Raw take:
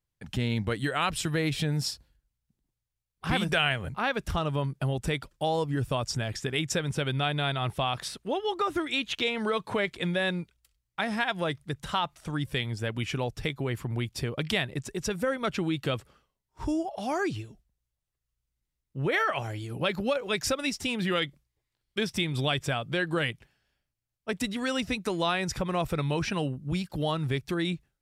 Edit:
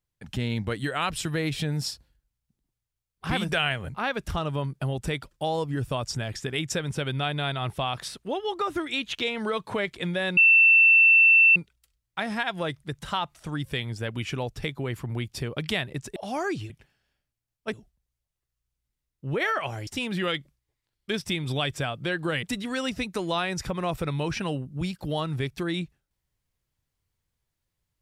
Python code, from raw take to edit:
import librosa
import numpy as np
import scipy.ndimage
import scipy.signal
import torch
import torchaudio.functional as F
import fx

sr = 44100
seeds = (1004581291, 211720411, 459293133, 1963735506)

y = fx.edit(x, sr, fx.insert_tone(at_s=10.37, length_s=1.19, hz=2680.0, db=-13.0),
    fx.cut(start_s=14.97, length_s=1.94),
    fx.cut(start_s=19.59, length_s=1.16),
    fx.move(start_s=23.31, length_s=1.03, to_s=17.45), tone=tone)